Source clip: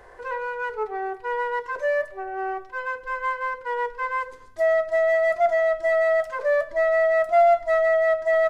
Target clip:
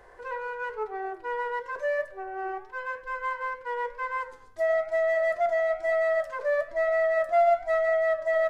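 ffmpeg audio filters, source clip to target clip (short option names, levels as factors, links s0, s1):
-af "flanger=delay=5.7:depth=4.2:regen=-90:speed=1:shape=triangular"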